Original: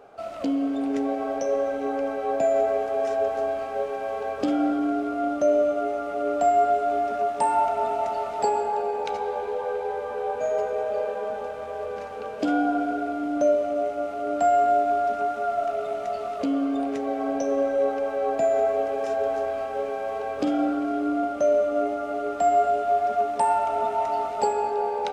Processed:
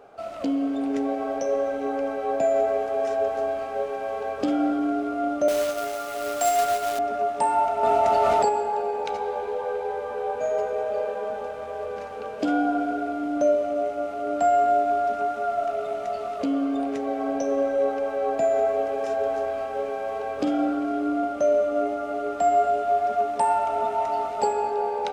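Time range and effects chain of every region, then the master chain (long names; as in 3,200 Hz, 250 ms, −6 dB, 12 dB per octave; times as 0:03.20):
0:05.48–0:06.99: spectral tilt +4.5 dB per octave + log-companded quantiser 4 bits
0:07.83–0:08.49: parametric band 90 Hz +3.5 dB 0.98 octaves + envelope flattener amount 100%
whole clip: no processing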